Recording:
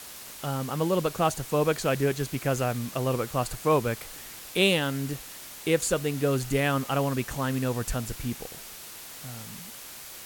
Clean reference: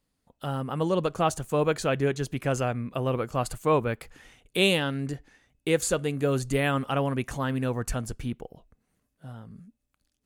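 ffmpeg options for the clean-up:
-af "afftdn=nr=30:nf=-43"

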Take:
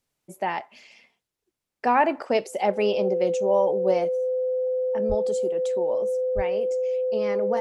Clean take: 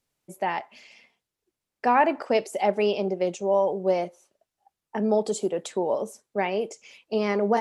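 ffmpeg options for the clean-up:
-filter_complex "[0:a]bandreject=f=510:w=30,asplit=3[s0][s1][s2];[s0]afade=t=out:st=5.08:d=0.02[s3];[s1]highpass=f=140:w=0.5412,highpass=f=140:w=1.3066,afade=t=in:st=5.08:d=0.02,afade=t=out:st=5.2:d=0.02[s4];[s2]afade=t=in:st=5.2:d=0.02[s5];[s3][s4][s5]amix=inputs=3:normalize=0,asplit=3[s6][s7][s8];[s6]afade=t=out:st=6.35:d=0.02[s9];[s7]highpass=f=140:w=0.5412,highpass=f=140:w=1.3066,afade=t=in:st=6.35:d=0.02,afade=t=out:st=6.47:d=0.02[s10];[s8]afade=t=in:st=6.47:d=0.02[s11];[s9][s10][s11]amix=inputs=3:normalize=0,asetnsamples=n=441:p=0,asendcmd='4.17 volume volume 6dB',volume=1"

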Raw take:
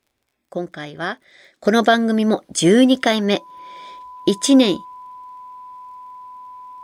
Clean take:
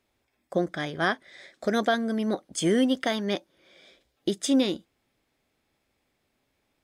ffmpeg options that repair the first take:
-af "adeclick=t=4,bandreject=f=1000:w=30,asetnsamples=n=441:p=0,asendcmd='1.65 volume volume -10dB',volume=1"

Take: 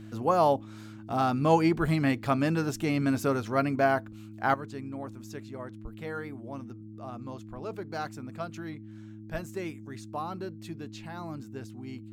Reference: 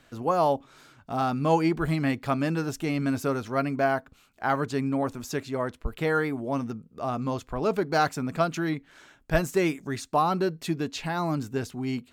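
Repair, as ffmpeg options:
-af "bandreject=f=107.5:t=h:w=4,bandreject=f=215:t=h:w=4,bandreject=f=322.5:t=h:w=4,asetnsamples=n=441:p=0,asendcmd='4.54 volume volume 12dB',volume=1"

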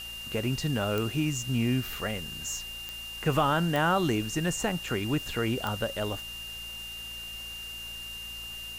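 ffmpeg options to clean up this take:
-af "adeclick=t=4,bandreject=f=56.8:t=h:w=4,bandreject=f=113.6:t=h:w=4,bandreject=f=170.4:t=h:w=4,bandreject=f=227.2:t=h:w=4,bandreject=f=2800:w=30,afwtdn=0.0045"

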